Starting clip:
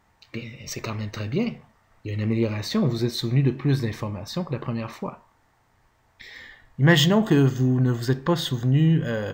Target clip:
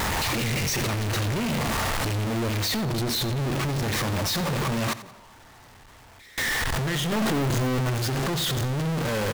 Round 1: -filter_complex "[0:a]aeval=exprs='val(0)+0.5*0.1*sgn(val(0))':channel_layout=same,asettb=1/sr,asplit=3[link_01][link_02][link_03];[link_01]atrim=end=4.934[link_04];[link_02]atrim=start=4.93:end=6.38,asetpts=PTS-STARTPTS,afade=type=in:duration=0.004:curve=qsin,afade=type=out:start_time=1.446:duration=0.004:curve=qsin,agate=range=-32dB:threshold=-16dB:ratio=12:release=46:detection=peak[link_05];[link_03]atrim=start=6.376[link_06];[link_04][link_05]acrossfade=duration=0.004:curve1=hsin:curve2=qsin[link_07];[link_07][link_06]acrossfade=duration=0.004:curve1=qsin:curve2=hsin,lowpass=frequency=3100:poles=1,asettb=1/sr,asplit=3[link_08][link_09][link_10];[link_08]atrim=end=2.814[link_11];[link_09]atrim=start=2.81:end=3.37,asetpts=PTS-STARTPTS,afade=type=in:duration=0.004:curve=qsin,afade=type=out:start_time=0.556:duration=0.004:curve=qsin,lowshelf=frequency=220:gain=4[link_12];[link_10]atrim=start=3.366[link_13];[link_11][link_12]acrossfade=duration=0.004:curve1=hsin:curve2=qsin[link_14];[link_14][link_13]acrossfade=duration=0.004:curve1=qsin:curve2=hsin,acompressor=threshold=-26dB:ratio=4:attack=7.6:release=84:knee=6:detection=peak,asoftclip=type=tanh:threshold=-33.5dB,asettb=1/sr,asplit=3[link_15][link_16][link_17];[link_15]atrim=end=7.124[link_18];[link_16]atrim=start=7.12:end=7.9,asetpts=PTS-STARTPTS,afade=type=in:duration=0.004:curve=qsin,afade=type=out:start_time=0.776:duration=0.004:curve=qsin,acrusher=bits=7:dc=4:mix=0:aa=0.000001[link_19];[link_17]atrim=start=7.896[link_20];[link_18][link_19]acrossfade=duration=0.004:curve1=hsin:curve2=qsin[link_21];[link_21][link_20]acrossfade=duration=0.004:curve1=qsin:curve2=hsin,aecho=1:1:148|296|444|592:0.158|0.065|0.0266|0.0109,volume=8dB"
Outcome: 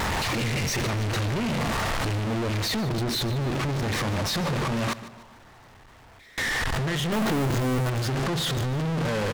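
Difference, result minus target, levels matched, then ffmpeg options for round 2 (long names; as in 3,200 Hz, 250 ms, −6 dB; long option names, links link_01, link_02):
echo 60 ms late; 8,000 Hz band −3.0 dB
-filter_complex "[0:a]aeval=exprs='val(0)+0.5*0.1*sgn(val(0))':channel_layout=same,asettb=1/sr,asplit=3[link_01][link_02][link_03];[link_01]atrim=end=4.934[link_04];[link_02]atrim=start=4.93:end=6.38,asetpts=PTS-STARTPTS,afade=type=in:duration=0.004:curve=qsin,afade=type=out:start_time=1.446:duration=0.004:curve=qsin,agate=range=-32dB:threshold=-16dB:ratio=12:release=46:detection=peak[link_05];[link_03]atrim=start=6.376[link_06];[link_04][link_05]acrossfade=duration=0.004:curve1=hsin:curve2=qsin[link_07];[link_07][link_06]acrossfade=duration=0.004:curve1=qsin:curve2=hsin,lowpass=frequency=9900:poles=1,asettb=1/sr,asplit=3[link_08][link_09][link_10];[link_08]atrim=end=2.814[link_11];[link_09]atrim=start=2.81:end=3.37,asetpts=PTS-STARTPTS,afade=type=in:duration=0.004:curve=qsin,afade=type=out:start_time=0.556:duration=0.004:curve=qsin,lowshelf=frequency=220:gain=4[link_12];[link_10]atrim=start=3.366[link_13];[link_11][link_12]acrossfade=duration=0.004:curve1=hsin:curve2=qsin[link_14];[link_14][link_13]acrossfade=duration=0.004:curve1=qsin:curve2=hsin,acompressor=threshold=-26dB:ratio=4:attack=7.6:release=84:knee=6:detection=peak,asoftclip=type=tanh:threshold=-33.5dB,asettb=1/sr,asplit=3[link_15][link_16][link_17];[link_15]atrim=end=7.124[link_18];[link_16]atrim=start=7.12:end=7.9,asetpts=PTS-STARTPTS,afade=type=in:duration=0.004:curve=qsin,afade=type=out:start_time=0.776:duration=0.004:curve=qsin,acrusher=bits=7:dc=4:mix=0:aa=0.000001[link_19];[link_17]atrim=start=7.896[link_20];[link_18][link_19]acrossfade=duration=0.004:curve1=hsin:curve2=qsin[link_21];[link_21][link_20]acrossfade=duration=0.004:curve1=qsin:curve2=hsin,aecho=1:1:88|176|264|352:0.158|0.065|0.0266|0.0109,volume=8dB"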